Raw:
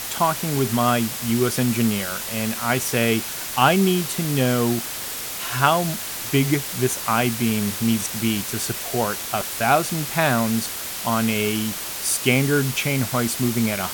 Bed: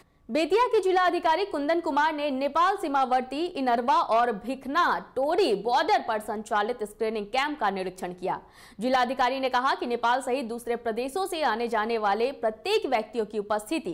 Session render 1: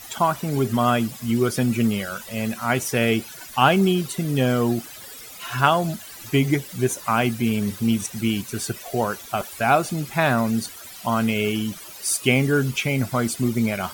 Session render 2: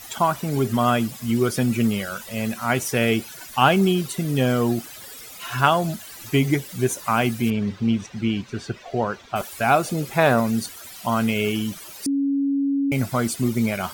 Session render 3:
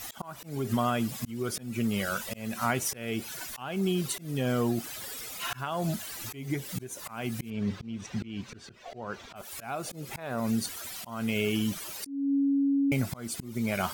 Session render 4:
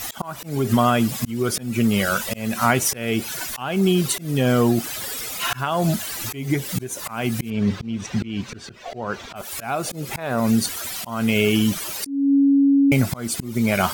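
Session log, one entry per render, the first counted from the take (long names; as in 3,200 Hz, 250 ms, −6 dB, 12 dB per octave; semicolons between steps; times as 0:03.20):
broadband denoise 15 dB, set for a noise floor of −31 dBFS
0:07.50–0:09.36: high-frequency loss of the air 170 metres; 0:09.87–0:10.40: parametric band 480 Hz +10.5 dB 0.63 octaves; 0:12.06–0:12.92: beep over 278 Hz −18.5 dBFS
downward compressor 16 to 1, threshold −23 dBFS, peak gain reduction 13 dB; volume swells 294 ms
level +10 dB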